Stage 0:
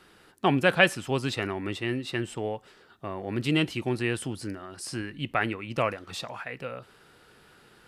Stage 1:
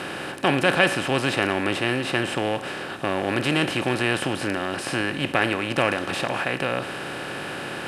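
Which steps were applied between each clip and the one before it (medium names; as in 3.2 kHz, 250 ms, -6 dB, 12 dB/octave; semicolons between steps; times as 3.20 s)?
spectral levelling over time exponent 0.4; trim -1.5 dB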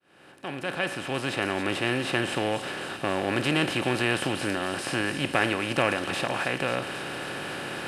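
fade-in on the opening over 1.96 s; feedback echo behind a high-pass 270 ms, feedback 77%, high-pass 3.7 kHz, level -7 dB; trim -2.5 dB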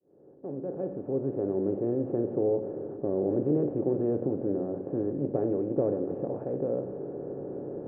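four-pole ladder low-pass 520 Hz, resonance 55%; on a send at -9 dB: reverberation RT60 0.85 s, pre-delay 7 ms; on the sum: trim +6 dB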